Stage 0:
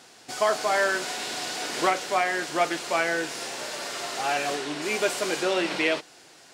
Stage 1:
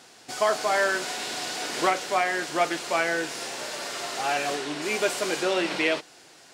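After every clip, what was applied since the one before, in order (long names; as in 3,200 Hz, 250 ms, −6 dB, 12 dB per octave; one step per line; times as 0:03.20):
no processing that can be heard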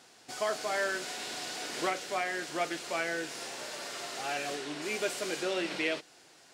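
dynamic equaliser 950 Hz, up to −5 dB, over −38 dBFS, Q 1.6
level −6.5 dB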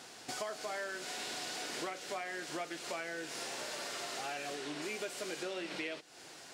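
downward compressor 5 to 1, threshold −45 dBFS, peak gain reduction 16.5 dB
level +6 dB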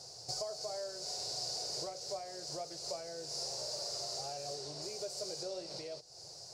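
drawn EQ curve 130 Hz 0 dB, 250 Hz −28 dB, 390 Hz −13 dB, 580 Hz −7 dB, 1,700 Hz −29 dB, 3,300 Hz −26 dB, 4,700 Hz 0 dB, 8,700 Hz −12 dB, 14,000 Hz −17 dB
level +9.5 dB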